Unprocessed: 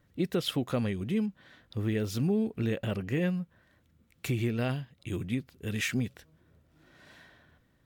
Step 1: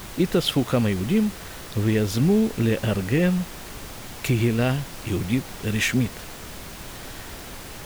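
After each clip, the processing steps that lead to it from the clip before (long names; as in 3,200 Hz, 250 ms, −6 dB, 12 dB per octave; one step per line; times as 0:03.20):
background noise pink −46 dBFS
level +8.5 dB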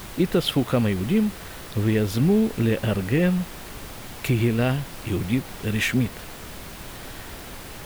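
dynamic equaliser 6,300 Hz, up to −5 dB, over −47 dBFS, Q 1.3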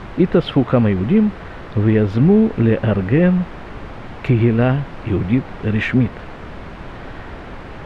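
low-pass filter 1,900 Hz 12 dB per octave
level +7 dB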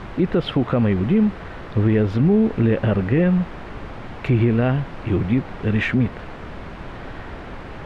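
brickwall limiter −7.5 dBFS, peak gain reduction 5.5 dB
level −1.5 dB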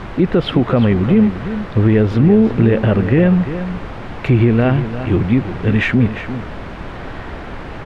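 single-tap delay 349 ms −11.5 dB
level +5 dB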